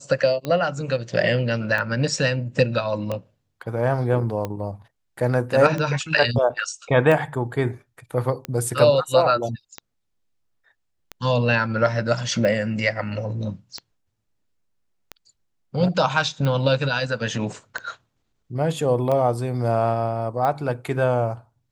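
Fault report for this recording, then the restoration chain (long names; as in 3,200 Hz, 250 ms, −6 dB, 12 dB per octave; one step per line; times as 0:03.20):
scratch tick 45 rpm −14 dBFS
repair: click removal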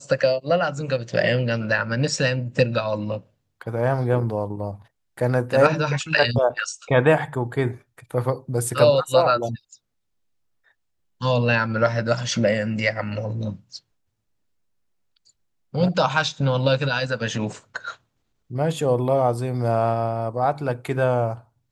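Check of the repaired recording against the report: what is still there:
none of them is left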